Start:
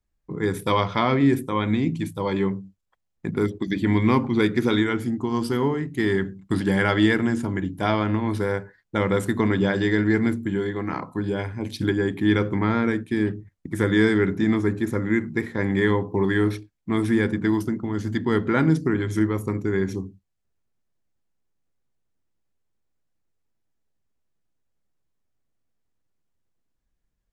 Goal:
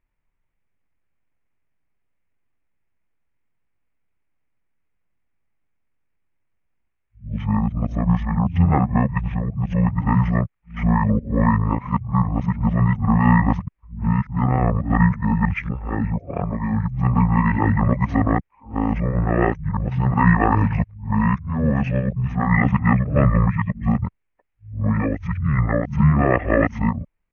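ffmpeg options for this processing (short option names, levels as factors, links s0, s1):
-af "areverse,highshelf=f=5900:t=q:w=3:g=-13.5,asetrate=24046,aresample=44100,atempo=1.83401,volume=1.5"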